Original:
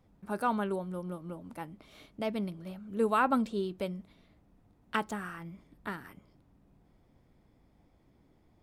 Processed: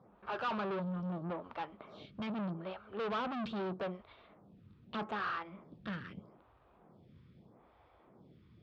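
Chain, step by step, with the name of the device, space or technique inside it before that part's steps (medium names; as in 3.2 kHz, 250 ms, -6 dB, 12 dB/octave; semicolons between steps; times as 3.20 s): vibe pedal into a guitar amplifier (lamp-driven phase shifter 0.8 Hz; valve stage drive 46 dB, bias 0.5; cabinet simulation 93–3800 Hz, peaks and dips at 280 Hz -8 dB, 1.2 kHz +5 dB, 2 kHz -5 dB); trim +11.5 dB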